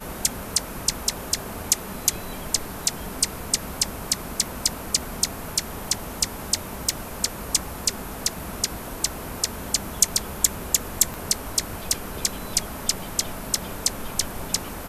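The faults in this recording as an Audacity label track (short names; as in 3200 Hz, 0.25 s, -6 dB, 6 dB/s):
6.890000	6.890000	pop
11.140000	11.140000	pop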